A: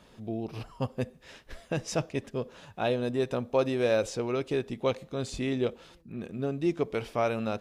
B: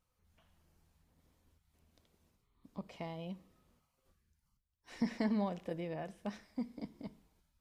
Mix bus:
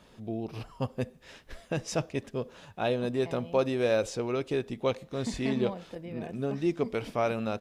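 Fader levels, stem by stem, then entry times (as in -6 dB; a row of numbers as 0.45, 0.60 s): -0.5, -1.0 dB; 0.00, 0.25 s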